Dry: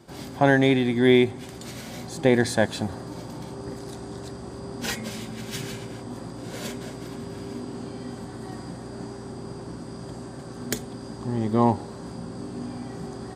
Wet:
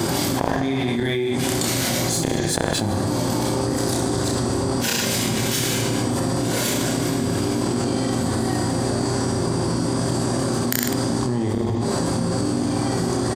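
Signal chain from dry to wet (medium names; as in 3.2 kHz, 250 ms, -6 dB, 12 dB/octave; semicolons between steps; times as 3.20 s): high-pass 72 Hz 24 dB/octave; treble shelf 6.2 kHz +8.5 dB; in parallel at -4 dB: crossover distortion -30.5 dBFS; on the sum: inverted gate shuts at -11 dBFS, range -33 dB; reverse bouncing-ball echo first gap 30 ms, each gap 1.15×, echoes 5; on a send at -11.5 dB: reverberation RT60 1.0 s, pre-delay 3 ms; on the sum: level flattener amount 100%; trim -3 dB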